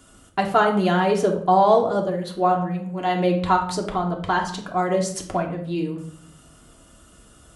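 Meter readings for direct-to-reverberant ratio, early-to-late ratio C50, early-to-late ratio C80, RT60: 0.5 dB, 8.0 dB, 12.5 dB, 0.55 s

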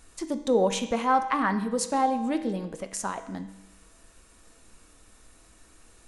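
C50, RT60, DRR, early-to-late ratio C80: 11.0 dB, 1.0 s, 8.0 dB, 13.0 dB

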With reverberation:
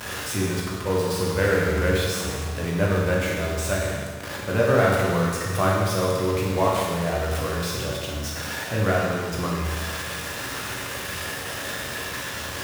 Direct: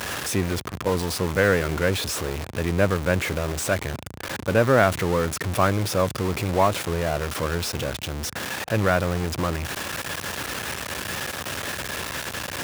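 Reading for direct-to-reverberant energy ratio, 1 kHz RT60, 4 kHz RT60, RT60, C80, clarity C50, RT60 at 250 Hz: -4.0 dB, 1.5 s, 1.5 s, 1.5 s, 2.0 dB, 0.0 dB, 1.5 s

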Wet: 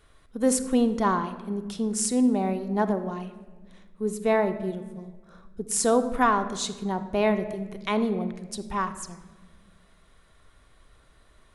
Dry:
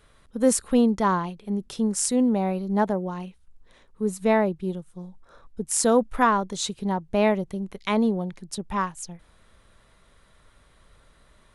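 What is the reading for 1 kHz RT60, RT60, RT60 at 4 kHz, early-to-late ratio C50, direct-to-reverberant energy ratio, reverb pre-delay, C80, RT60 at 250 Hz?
1.2 s, 1.4 s, 0.90 s, 11.5 dB, 8.0 dB, 3 ms, 13.0 dB, 2.1 s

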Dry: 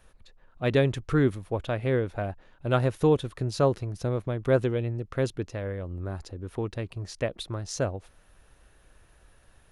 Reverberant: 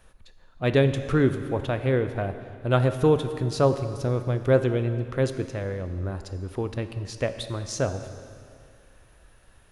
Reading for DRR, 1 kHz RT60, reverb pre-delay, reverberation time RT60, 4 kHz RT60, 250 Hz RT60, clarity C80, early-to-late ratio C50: 9.0 dB, 2.3 s, 6 ms, 2.3 s, 2.1 s, 2.1 s, 11.0 dB, 10.0 dB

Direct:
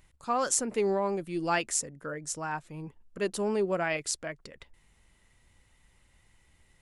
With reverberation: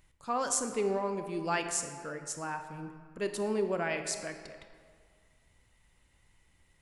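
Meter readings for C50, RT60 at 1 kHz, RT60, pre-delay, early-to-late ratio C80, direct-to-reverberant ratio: 8.0 dB, 2.0 s, 1.9 s, 25 ms, 9.0 dB, 7.0 dB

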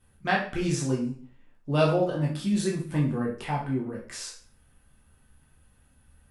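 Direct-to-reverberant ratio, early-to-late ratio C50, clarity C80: -3.0 dB, 6.0 dB, 11.0 dB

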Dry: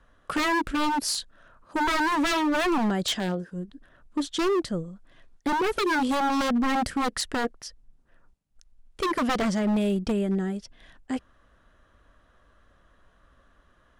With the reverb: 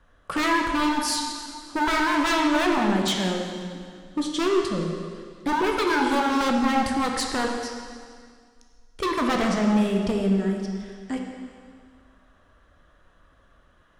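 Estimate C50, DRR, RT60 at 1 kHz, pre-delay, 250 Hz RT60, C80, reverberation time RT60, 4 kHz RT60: 2.5 dB, 0.5 dB, 2.0 s, 6 ms, 2.1 s, 4.0 dB, 2.0 s, 1.9 s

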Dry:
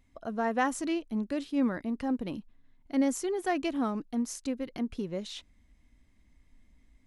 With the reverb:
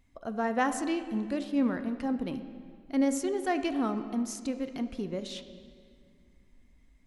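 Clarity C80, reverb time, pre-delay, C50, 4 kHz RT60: 11.5 dB, 2.1 s, 10 ms, 10.5 dB, 1.6 s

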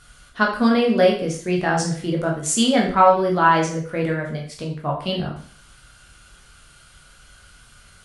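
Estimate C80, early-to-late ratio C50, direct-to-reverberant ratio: 10.5 dB, 6.5 dB, -1.5 dB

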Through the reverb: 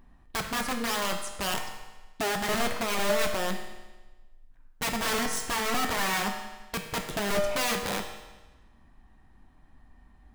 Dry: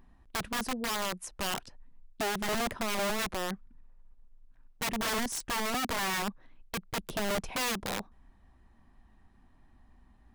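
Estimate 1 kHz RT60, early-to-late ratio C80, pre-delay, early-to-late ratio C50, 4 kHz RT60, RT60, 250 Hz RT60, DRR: 1.2 s, 8.0 dB, 7 ms, 6.0 dB, 1.1 s, 1.2 s, 1.2 s, 2.5 dB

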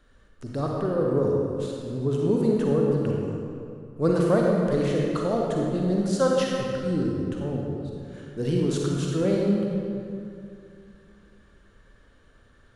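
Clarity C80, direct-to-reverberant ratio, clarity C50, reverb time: 0.5 dB, -2.0 dB, -1.0 dB, 2.5 s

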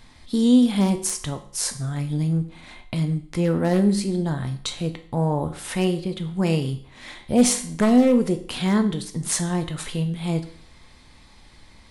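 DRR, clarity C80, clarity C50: 6.5 dB, 16.0 dB, 12.5 dB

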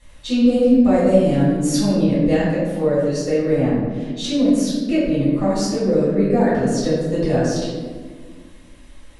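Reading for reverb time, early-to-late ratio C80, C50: 1.6 s, 2.0 dB, -1.0 dB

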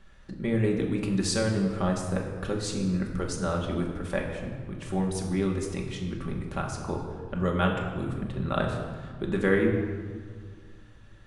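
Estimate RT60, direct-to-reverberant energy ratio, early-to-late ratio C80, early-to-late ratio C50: 1.8 s, -0.5 dB, 6.0 dB, 5.0 dB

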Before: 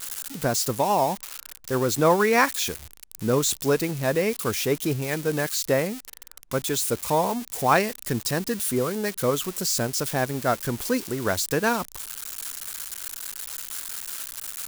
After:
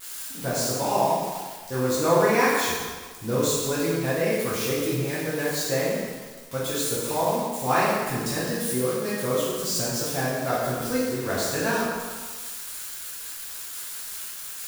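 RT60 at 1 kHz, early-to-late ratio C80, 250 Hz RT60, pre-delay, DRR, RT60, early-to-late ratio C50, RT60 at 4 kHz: 1.5 s, 1.0 dB, 1.3 s, 4 ms, -8.5 dB, 1.5 s, -1.0 dB, 1.3 s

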